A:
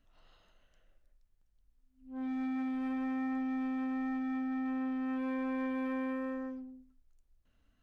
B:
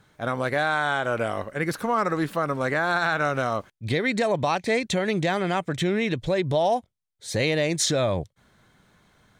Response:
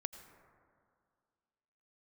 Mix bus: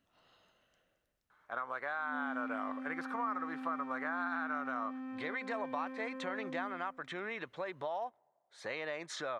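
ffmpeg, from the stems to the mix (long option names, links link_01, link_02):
-filter_complex "[0:a]alimiter=level_in=13.5dB:limit=-24dB:level=0:latency=1,volume=-13.5dB,volume=0dB,asplit=2[link_01][link_02];[link_02]volume=-14.5dB[link_03];[1:a]bandpass=frequency=1200:width_type=q:width=2.4:csg=0,acompressor=threshold=-35dB:ratio=4,adelay=1300,volume=-1dB,asplit=2[link_04][link_05];[link_05]volume=-23.5dB[link_06];[2:a]atrim=start_sample=2205[link_07];[link_06][link_07]afir=irnorm=-1:irlink=0[link_08];[link_03]aecho=0:1:220|440|660|880|1100:1|0.39|0.152|0.0593|0.0231[link_09];[link_01][link_04][link_08][link_09]amix=inputs=4:normalize=0,highpass=120"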